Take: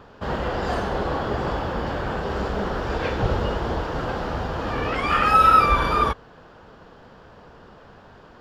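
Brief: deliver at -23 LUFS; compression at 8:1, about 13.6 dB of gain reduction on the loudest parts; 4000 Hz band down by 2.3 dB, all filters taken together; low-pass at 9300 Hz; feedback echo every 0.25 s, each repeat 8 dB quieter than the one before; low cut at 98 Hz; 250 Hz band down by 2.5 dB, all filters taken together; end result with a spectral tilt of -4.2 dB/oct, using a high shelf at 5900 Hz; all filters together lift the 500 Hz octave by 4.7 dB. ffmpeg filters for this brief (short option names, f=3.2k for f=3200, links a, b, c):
-af "highpass=98,lowpass=9.3k,equalizer=f=250:t=o:g=-6,equalizer=f=500:t=o:g=7,equalizer=f=4k:t=o:g=-6,highshelf=f=5.9k:g=8,acompressor=threshold=-25dB:ratio=8,aecho=1:1:250|500|750|1000|1250:0.398|0.159|0.0637|0.0255|0.0102,volume=5.5dB"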